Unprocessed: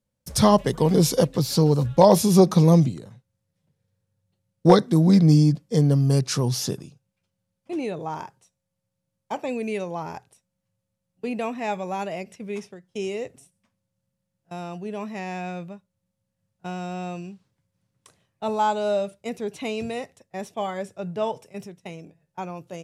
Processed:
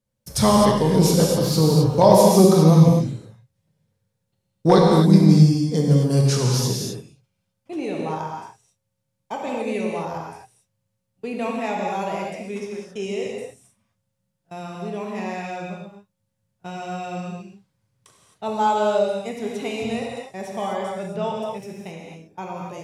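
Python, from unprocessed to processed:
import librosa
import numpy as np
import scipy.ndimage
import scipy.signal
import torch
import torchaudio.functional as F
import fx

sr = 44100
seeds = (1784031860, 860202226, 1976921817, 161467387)

y = fx.rev_gated(x, sr, seeds[0], gate_ms=290, shape='flat', drr_db=-2.0)
y = F.gain(torch.from_numpy(y), -1.0).numpy()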